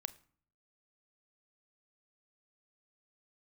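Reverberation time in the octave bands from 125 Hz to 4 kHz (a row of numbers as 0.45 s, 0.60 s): 0.85 s, 0.70 s, 0.50 s, 0.50 s, 0.45 s, 0.35 s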